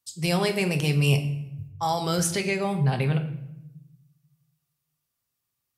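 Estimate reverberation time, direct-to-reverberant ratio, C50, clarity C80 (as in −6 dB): 0.85 s, 5.0 dB, 11.5 dB, 14.0 dB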